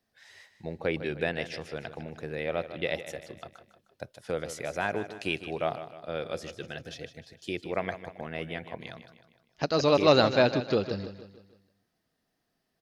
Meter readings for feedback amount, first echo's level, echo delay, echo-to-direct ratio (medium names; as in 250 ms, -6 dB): 47%, -12.0 dB, 154 ms, -11.0 dB